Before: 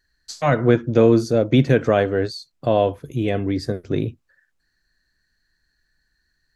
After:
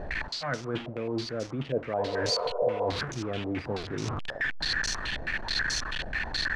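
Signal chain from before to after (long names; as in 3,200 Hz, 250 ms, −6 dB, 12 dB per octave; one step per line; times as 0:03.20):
linear delta modulator 64 kbit/s, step −23 dBFS
reversed playback
downward compressor 16 to 1, threshold −25 dBFS, peak gain reduction 17 dB
reversed playback
healed spectral selection 0:02.01–0:02.83, 390–1,500 Hz after
low-pass on a step sequencer 9.3 Hz 630–5,800 Hz
level −4 dB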